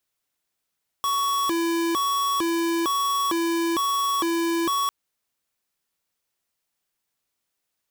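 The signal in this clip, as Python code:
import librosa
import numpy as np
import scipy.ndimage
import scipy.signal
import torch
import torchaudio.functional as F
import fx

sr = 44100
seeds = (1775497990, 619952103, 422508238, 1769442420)

y = fx.siren(sr, length_s=3.85, kind='hi-lo', low_hz=335.0, high_hz=1120.0, per_s=1.1, wave='square', level_db=-23.5)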